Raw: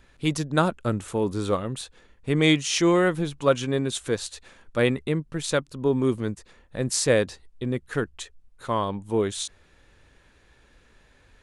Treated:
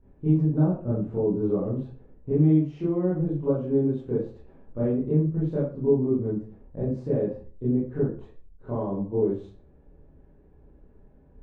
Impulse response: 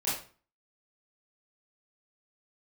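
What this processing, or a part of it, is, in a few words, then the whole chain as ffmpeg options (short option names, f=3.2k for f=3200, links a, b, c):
television next door: -filter_complex "[0:a]acompressor=threshold=-25dB:ratio=4,lowpass=420[a];[1:a]atrim=start_sample=2205[b];[a][b]afir=irnorm=-1:irlink=0"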